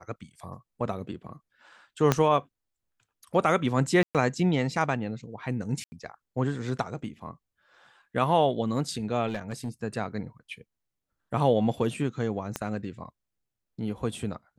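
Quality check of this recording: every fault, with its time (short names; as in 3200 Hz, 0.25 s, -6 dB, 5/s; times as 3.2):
2.12 pop -7 dBFS
4.03–4.15 gap 0.117 s
5.84–5.92 gap 80 ms
9.27–9.69 clipped -26 dBFS
12.56 pop -15 dBFS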